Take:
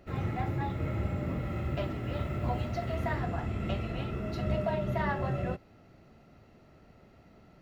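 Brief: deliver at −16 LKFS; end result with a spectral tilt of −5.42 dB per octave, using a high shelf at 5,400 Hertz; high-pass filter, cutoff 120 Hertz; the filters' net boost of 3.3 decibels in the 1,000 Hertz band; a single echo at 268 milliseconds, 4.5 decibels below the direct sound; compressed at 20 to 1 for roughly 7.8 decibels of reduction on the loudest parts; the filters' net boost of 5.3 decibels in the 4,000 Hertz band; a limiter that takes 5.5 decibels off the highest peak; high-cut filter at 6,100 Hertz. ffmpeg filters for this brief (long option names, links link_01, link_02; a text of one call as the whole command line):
ffmpeg -i in.wav -af "highpass=120,lowpass=6100,equalizer=frequency=1000:width_type=o:gain=4,equalizer=frequency=4000:width_type=o:gain=5.5,highshelf=frequency=5400:gain=5.5,acompressor=threshold=-32dB:ratio=20,alimiter=level_in=5.5dB:limit=-24dB:level=0:latency=1,volume=-5.5dB,aecho=1:1:268:0.596,volume=21.5dB" out.wav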